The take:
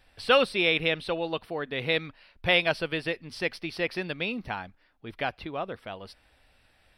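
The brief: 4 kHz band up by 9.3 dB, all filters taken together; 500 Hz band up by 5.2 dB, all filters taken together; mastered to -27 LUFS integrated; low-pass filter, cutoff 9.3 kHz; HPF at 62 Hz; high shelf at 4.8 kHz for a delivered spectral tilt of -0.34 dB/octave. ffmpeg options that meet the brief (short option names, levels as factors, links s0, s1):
-af "highpass=62,lowpass=9300,equalizer=f=500:t=o:g=5.5,equalizer=f=4000:t=o:g=8,highshelf=f=4800:g=9,volume=0.562"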